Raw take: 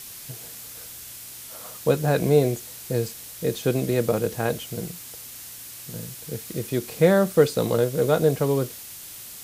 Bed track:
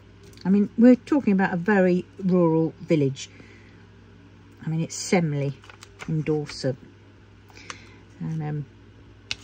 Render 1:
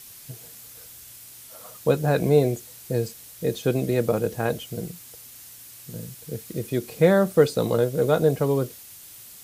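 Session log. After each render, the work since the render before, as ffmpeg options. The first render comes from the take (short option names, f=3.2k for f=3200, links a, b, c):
-af "afftdn=nr=6:nf=-40"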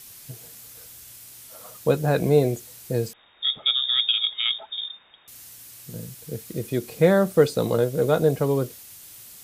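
-filter_complex "[0:a]asettb=1/sr,asplit=3[a][b][c];[a]atrim=end=3.134[d];[b]atrim=start=3.13:end=5.28,asetpts=PTS-STARTPTS,afade=t=in:d=0.004:c=qsin,afade=t=out:st=2.146:d=0.004:c=qsin,lowpass=f=3.2k:t=q:w=0.5098,lowpass=f=3.2k:t=q:w=0.6013,lowpass=f=3.2k:t=q:w=0.9,lowpass=f=3.2k:t=q:w=2.563,afreqshift=-3800[e];[c]atrim=start=5.276[f];[d][e]acrossfade=d=0.004:c1=hsin:c2=qsin[g];[g][f]acrossfade=d=0.004:c1=qsin:c2=hsin"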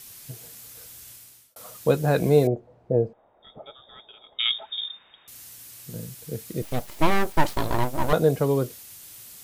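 -filter_complex "[0:a]asettb=1/sr,asplit=3[a][b][c];[a]atrim=end=2.474[d];[b]atrim=start=2.47:end=4.39,asetpts=PTS-STARTPTS,afade=t=in:d=0.004:c=qsin,afade=t=out:st=1.916:d=0.004:c=qsin,lowpass=f=670:t=q:w=2.3[e];[c]atrim=start=4.386[f];[d][e]acrossfade=d=0.004:c1=hsin:c2=qsin[g];[g][f]acrossfade=d=0.004:c1=qsin:c2=hsin,asettb=1/sr,asplit=3[h][i][j];[h]atrim=end=6.624[k];[i]atrim=start=6.62:end=8.13,asetpts=PTS-STARTPTS,afade=t=in:d=0.004:c=qsin,afade=t=out:st=1.506:d=0.004:c=qsin,aeval=exprs='abs(val(0))':c=same[l];[j]atrim=start=8.126[m];[k][l]acrossfade=d=0.004:c1=hsin:c2=qsin[n];[n][m]acrossfade=d=0.004:c1=qsin:c2=hsin,asplit=2[o][p];[o]atrim=end=1.56,asetpts=PTS-STARTPTS,afade=t=out:st=1.09:d=0.47[q];[p]atrim=start=1.56,asetpts=PTS-STARTPTS,afade=t=in:d=0.004:c=hsin[r];[q][r]concat=n=2:v=0:a=1"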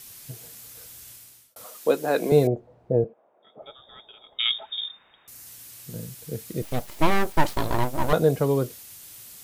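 -filter_complex "[0:a]asettb=1/sr,asplit=3[a][b][c];[a]atrim=end=1.654[d];[b]atrim=start=1.65:end=2.32,asetpts=PTS-STARTPTS,afade=t=in:d=0.004:c=qsin,afade=t=out:st=0.666:d=0.004:c=qsin,highpass=f=250:w=0.5412,highpass=f=250:w=1.3066[e];[c]atrim=start=2.316[f];[d][e]acrossfade=d=0.004:c1=hsin:c2=qsin[g];[g][f]acrossfade=d=0.004:c1=qsin:c2=hsin,asettb=1/sr,asplit=3[h][i][j];[h]atrim=end=3.044[k];[i]atrim=start=3.04:end=3.62,asetpts=PTS-STARTPTS,afade=t=in:d=0.004:c=qsin,afade=t=out:st=0.576:d=0.004:c=qsin,highpass=f=170:w=0.5412,highpass=f=170:w=1.3066,equalizer=f=180:t=q:w=4:g=-7,equalizer=f=260:t=q:w=4:g=-5,equalizer=f=870:t=q:w=4:g=-5,equalizer=f=1.3k:t=q:w=4:g=-3,equalizer=f=1.9k:t=q:w=4:g=-6,lowpass=f=2.7k:w=0.5412,lowpass=f=2.7k:w=1.3066[l];[j]atrim=start=3.616[m];[k][l]acrossfade=d=0.004:c1=hsin:c2=qsin[n];[n][m]acrossfade=d=0.004:c1=qsin:c2=hsin,asettb=1/sr,asplit=3[o][p][q];[o]atrim=end=4.904[r];[p]atrim=start=4.9:end=5.47,asetpts=PTS-STARTPTS,afade=t=in:d=0.004:c=qsin,afade=t=out:st=0.566:d=0.004:c=qsin,equalizer=f=3.3k:t=o:w=0.64:g=-6.5[s];[q]atrim=start=5.466[t];[r][s]acrossfade=d=0.004:c1=hsin:c2=qsin[u];[u][t]acrossfade=d=0.004:c1=qsin:c2=hsin"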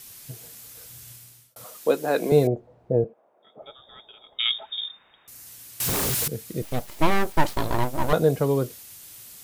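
-filter_complex "[0:a]asettb=1/sr,asplit=3[a][b][c];[a]atrim=end=0.894[d];[b]atrim=start=0.89:end=1.85,asetpts=PTS-STARTPTS,afade=t=in:d=0.004:c=qsin,afade=t=out:st=0.956:d=0.004:c=qsin,equalizer=f=130:t=o:w=0.64:g=13[e];[c]atrim=start=1.846[f];[d][e]acrossfade=d=0.004:c1=hsin:c2=qsin[g];[g][f]acrossfade=d=0.004:c1=qsin:c2=hsin,asettb=1/sr,asplit=3[h][i][j];[h]atrim=end=5.804[k];[i]atrim=start=5.8:end=6.28,asetpts=PTS-STARTPTS,afade=t=in:d=0.004:c=qsin,afade=t=out:st=0.476:d=0.004:c=qsin,aeval=exprs='0.0841*sin(PI/2*8.91*val(0)/0.0841)':c=same[l];[j]atrim=start=6.276[m];[k][l]acrossfade=d=0.004:c1=hsin:c2=qsin[n];[n][m]acrossfade=d=0.004:c1=qsin:c2=hsin"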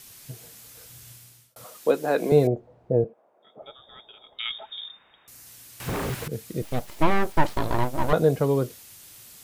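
-filter_complex "[0:a]acrossover=split=2600[a][b];[b]acompressor=threshold=-38dB:ratio=4:attack=1:release=60[c];[a][c]amix=inputs=2:normalize=0,highshelf=f=9.7k:g=-4.5"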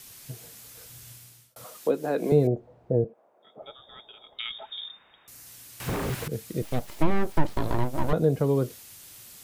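-filter_complex "[0:a]acrossover=split=450[a][b];[b]acompressor=threshold=-31dB:ratio=4[c];[a][c]amix=inputs=2:normalize=0"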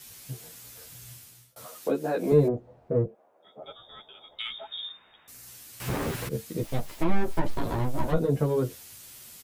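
-filter_complex "[0:a]asplit=2[a][b];[b]asoftclip=type=tanh:threshold=-21.5dB,volume=-7dB[c];[a][c]amix=inputs=2:normalize=0,asplit=2[d][e];[e]adelay=11,afreqshift=2.5[f];[d][f]amix=inputs=2:normalize=1"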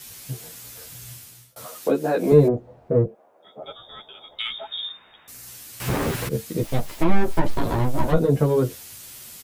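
-af "volume=6dB"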